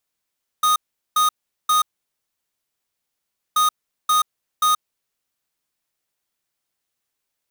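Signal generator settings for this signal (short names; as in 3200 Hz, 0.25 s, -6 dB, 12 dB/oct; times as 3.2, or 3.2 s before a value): beep pattern square 1240 Hz, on 0.13 s, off 0.40 s, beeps 3, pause 1.74 s, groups 2, -16.5 dBFS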